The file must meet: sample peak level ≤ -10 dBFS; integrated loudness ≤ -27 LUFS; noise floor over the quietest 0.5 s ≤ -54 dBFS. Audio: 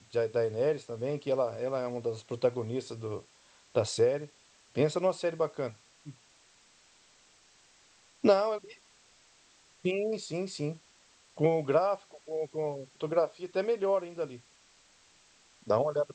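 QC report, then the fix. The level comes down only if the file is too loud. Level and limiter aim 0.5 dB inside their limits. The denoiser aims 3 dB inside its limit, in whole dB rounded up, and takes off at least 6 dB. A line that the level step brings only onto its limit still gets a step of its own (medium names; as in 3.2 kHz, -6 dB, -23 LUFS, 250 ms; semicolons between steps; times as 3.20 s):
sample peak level -11.0 dBFS: pass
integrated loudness -31.5 LUFS: pass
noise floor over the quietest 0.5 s -63 dBFS: pass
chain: none needed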